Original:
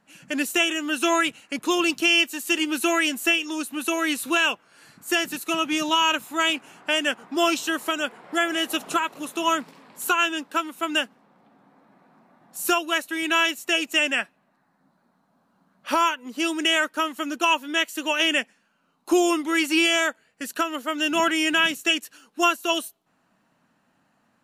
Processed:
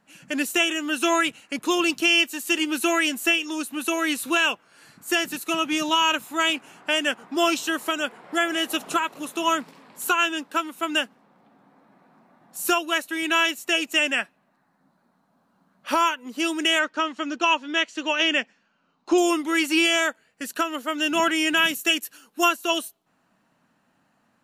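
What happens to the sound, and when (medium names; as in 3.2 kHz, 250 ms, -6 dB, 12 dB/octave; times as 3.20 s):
16.79–19.18 s: low-pass 6.2 kHz 24 dB/octave
21.57–22.49 s: peaking EQ 13 kHz +10 dB 0.68 oct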